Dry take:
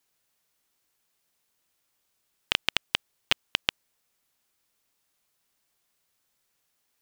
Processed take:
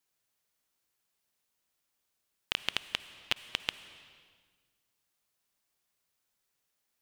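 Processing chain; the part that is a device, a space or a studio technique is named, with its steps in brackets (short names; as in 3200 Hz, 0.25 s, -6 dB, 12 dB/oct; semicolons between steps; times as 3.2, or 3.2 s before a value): saturated reverb return (on a send at -7.5 dB: reverb RT60 1.5 s, pre-delay 48 ms + soft clip -35.5 dBFS, distortion -7 dB); on the sum: gain -6.5 dB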